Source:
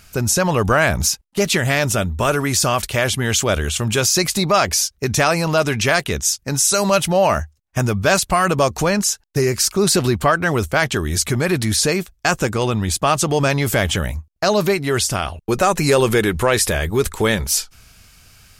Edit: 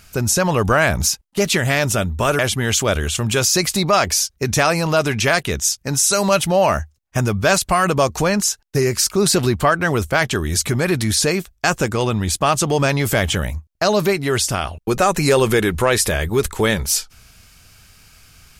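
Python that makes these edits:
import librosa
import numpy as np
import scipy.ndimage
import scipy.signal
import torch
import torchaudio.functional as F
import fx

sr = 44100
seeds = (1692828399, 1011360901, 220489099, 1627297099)

y = fx.edit(x, sr, fx.cut(start_s=2.39, length_s=0.61), tone=tone)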